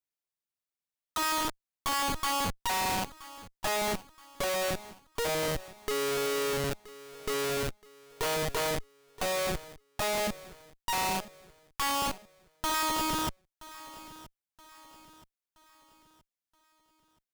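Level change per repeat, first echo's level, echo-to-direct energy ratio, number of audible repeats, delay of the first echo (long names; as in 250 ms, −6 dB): −7.5 dB, −18.0 dB, −17.0 dB, 3, 974 ms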